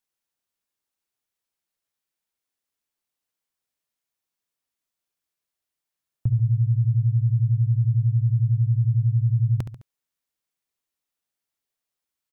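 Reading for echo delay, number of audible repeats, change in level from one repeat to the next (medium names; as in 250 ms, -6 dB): 70 ms, 3, -6.0 dB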